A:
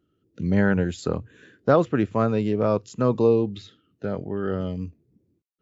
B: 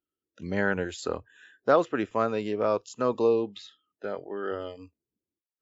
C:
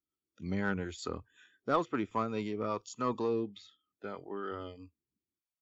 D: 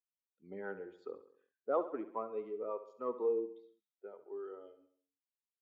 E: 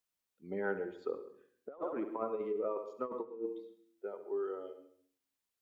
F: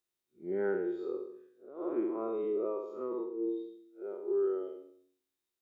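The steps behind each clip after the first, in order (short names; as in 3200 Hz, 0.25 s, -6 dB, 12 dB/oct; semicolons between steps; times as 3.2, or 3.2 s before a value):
bell 130 Hz -11.5 dB 1.6 oct; spectral noise reduction 17 dB; low shelf 410 Hz -4.5 dB
comb 0.9 ms, depth 51%; rotary speaker horn 5.5 Hz, later 0.7 Hz, at 1.94; in parallel at -3.5 dB: soft clip -24 dBFS, distortion -10 dB; on the sum: gain -7.5 dB
per-bin expansion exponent 1.5; ladder band-pass 570 Hz, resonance 40%; on a send: feedback echo 68 ms, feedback 52%, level -13 dB; on the sum: gain +9 dB
negative-ratio compressor -40 dBFS, ratio -0.5; on a send at -15.5 dB: reverb, pre-delay 0.1 s; on the sum: gain +4 dB
time blur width 0.112 s; small resonant body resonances 360/3700 Hz, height 15 dB, ringing for 75 ms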